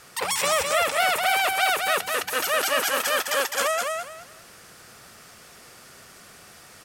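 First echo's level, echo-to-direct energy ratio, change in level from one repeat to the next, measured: -4.0 dB, -3.5 dB, -12.5 dB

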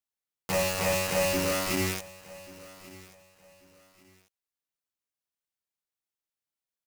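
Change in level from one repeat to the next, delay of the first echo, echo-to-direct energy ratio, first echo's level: -11.5 dB, 1.138 s, -19.5 dB, -20.0 dB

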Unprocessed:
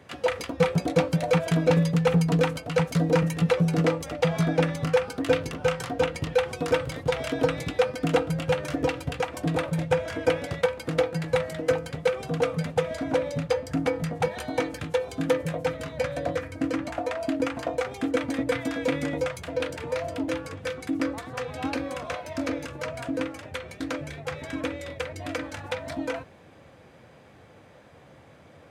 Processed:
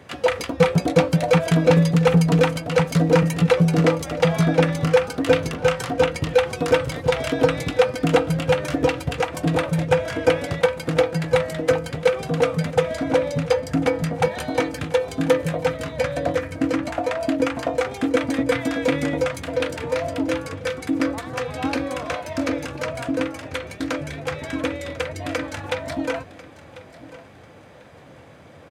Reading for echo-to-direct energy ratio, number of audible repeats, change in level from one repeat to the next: -17.5 dB, 2, -12.0 dB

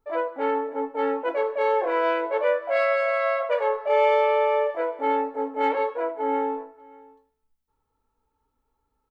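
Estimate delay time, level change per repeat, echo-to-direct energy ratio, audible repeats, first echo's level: 0.58 s, no steady repeat, -23.5 dB, 1, -23.5 dB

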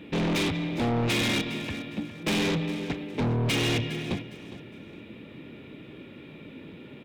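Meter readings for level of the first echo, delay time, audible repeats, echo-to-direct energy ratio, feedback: -15.0 dB, 0.409 s, 2, -14.5 dB, 29%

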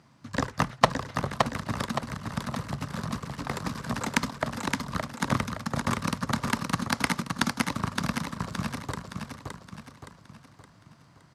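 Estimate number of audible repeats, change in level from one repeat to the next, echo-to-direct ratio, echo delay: 5, -7.0 dB, -3.5 dB, 0.568 s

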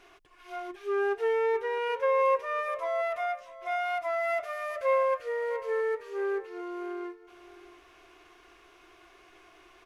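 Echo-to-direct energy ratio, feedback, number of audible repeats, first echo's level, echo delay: -17.5 dB, 25%, 2, -17.5 dB, 0.654 s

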